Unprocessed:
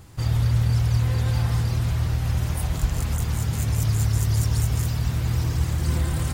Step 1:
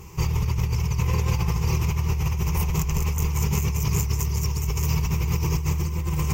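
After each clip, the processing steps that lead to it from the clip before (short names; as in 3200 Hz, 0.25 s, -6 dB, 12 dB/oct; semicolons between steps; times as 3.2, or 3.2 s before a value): ripple EQ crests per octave 0.77, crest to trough 15 dB; negative-ratio compressor -23 dBFS, ratio -1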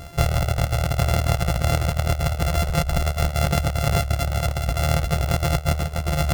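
sample sorter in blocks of 64 samples; reverb removal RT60 0.9 s; gain +4.5 dB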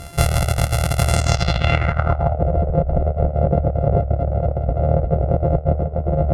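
low-pass sweep 11000 Hz -> 530 Hz, 1.06–2.46; gain +3 dB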